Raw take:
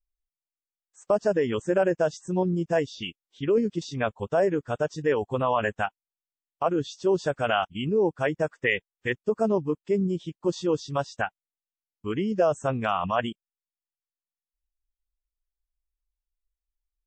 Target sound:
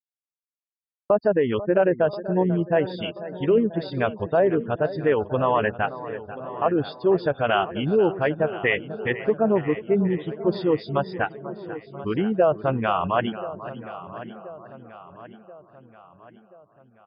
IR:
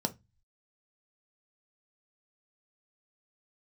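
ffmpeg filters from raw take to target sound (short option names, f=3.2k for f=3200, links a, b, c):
-filter_complex "[0:a]asplit=2[a][b];[b]aecho=0:1:490|980|1470|1960|2450|2940:0.178|0.101|0.0578|0.0329|0.0188|0.0107[c];[a][c]amix=inputs=2:normalize=0,aresample=11025,aresample=44100,highshelf=f=2.5k:g=-4,afftfilt=real='re*gte(hypot(re,im),0.00501)':imag='im*gte(hypot(re,im),0.00501)':win_size=1024:overlap=0.75,agate=range=-33dB:threshold=-50dB:ratio=3:detection=peak,asplit=2[d][e];[e]adelay=1031,lowpass=f=4.3k:p=1,volume=-15.5dB,asplit=2[f][g];[g]adelay=1031,lowpass=f=4.3k:p=1,volume=0.53,asplit=2[h][i];[i]adelay=1031,lowpass=f=4.3k:p=1,volume=0.53,asplit=2[j][k];[k]adelay=1031,lowpass=f=4.3k:p=1,volume=0.53,asplit=2[l][m];[m]adelay=1031,lowpass=f=4.3k:p=1,volume=0.53[n];[f][h][j][l][n]amix=inputs=5:normalize=0[o];[d][o]amix=inputs=2:normalize=0,volume=3.5dB"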